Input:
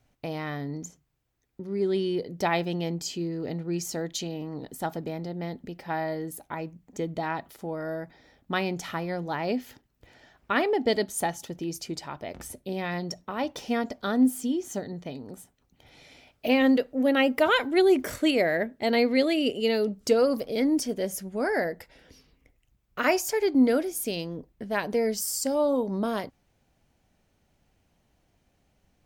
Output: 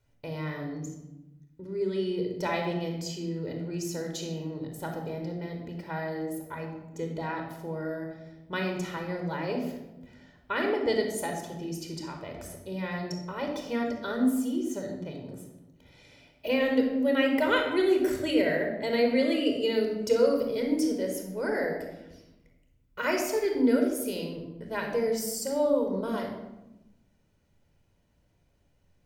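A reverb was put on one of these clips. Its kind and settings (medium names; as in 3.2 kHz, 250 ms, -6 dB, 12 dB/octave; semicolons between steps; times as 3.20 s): simulated room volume 3900 m³, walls furnished, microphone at 4.8 m; trim -7 dB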